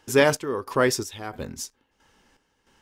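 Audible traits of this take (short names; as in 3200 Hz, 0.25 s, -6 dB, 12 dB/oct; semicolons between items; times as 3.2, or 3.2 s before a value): chopped level 1.5 Hz, depth 65%, duty 55%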